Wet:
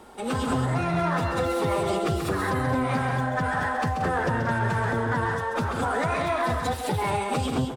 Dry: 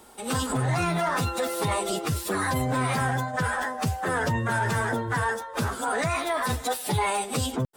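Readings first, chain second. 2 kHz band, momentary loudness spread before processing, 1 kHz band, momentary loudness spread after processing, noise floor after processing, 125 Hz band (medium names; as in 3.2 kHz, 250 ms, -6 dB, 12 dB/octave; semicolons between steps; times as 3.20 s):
-0.5 dB, 3 LU, +1.0 dB, 2 LU, -31 dBFS, +1.0 dB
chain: low-pass 2.2 kHz 6 dB/octave; in parallel at -8 dB: hard clipper -30 dBFS, distortion -7 dB; on the sum: compression, threshold -26 dBFS, peak gain reduction 6 dB; loudspeakers at several distances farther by 46 m -7 dB, 62 m -10 dB, 74 m -7 dB; trim +2 dB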